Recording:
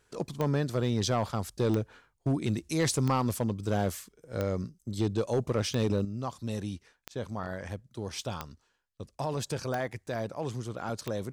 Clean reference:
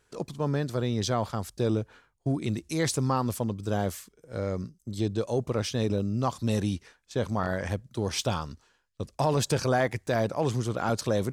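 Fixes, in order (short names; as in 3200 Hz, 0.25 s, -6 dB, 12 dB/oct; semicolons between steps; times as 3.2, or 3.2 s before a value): clip repair -19.5 dBFS; de-click; gain correction +7.5 dB, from 6.05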